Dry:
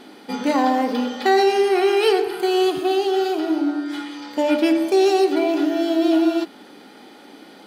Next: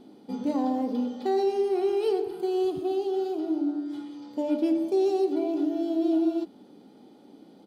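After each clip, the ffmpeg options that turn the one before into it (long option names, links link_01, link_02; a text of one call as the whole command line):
ffmpeg -i in.wav -af "firequalizer=gain_entry='entry(110,0);entry(290,-6);entry(1700,-25);entry(3500,-17)':delay=0.05:min_phase=1" out.wav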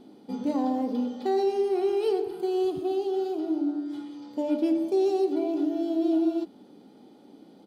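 ffmpeg -i in.wav -af anull out.wav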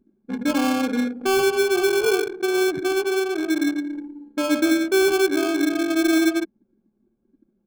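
ffmpeg -i in.wav -af "acrusher=samples=23:mix=1:aa=0.000001,anlmdn=6.31,volume=5.5dB" out.wav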